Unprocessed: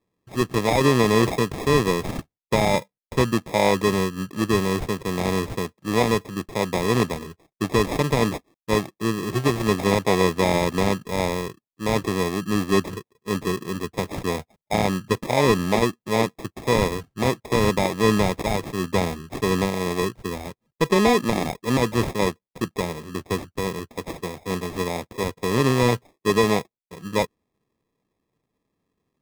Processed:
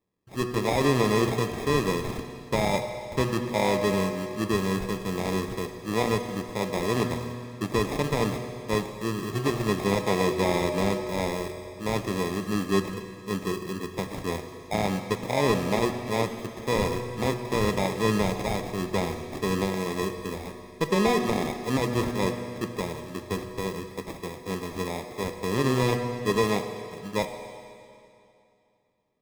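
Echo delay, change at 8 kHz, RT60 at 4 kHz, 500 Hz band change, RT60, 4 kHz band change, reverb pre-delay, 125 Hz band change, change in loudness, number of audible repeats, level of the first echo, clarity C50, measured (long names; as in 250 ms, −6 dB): no echo audible, −4.5 dB, 2.5 s, −4.5 dB, 2.6 s, −4.5 dB, 8 ms, −4.5 dB, −4.5 dB, no echo audible, no echo audible, 7.0 dB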